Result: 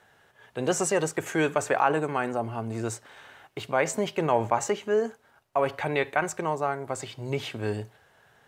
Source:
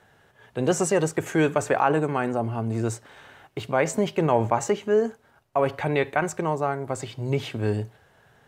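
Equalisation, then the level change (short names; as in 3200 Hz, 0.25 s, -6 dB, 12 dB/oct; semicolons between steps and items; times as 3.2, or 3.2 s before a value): low shelf 400 Hz -7.5 dB; 0.0 dB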